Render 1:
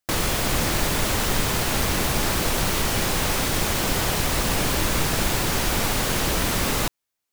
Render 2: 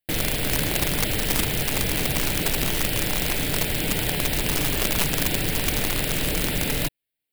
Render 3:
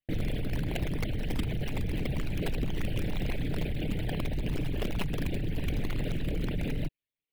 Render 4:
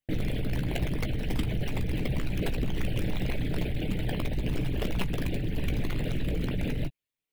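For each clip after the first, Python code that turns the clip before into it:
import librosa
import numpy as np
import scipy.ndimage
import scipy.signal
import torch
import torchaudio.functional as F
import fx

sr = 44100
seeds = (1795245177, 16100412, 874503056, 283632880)

y1 = fx.fixed_phaser(x, sr, hz=2700.0, stages=4)
y1 = y1 + 0.3 * np.pad(y1, (int(6.7 * sr / 1000.0), 0))[:len(y1)]
y1 = (np.mod(10.0 ** (16.0 / 20.0) * y1 + 1.0, 2.0) - 1.0) / 10.0 ** (16.0 / 20.0)
y2 = fx.envelope_sharpen(y1, sr, power=2.0)
y2 = fx.lowpass(y2, sr, hz=3400.0, slope=6)
y2 = fx.rider(y2, sr, range_db=10, speed_s=0.5)
y2 = F.gain(torch.from_numpy(y2), -5.0).numpy()
y3 = fx.doubler(y2, sr, ms=16.0, db=-10)
y3 = F.gain(torch.from_numpy(y3), 1.5).numpy()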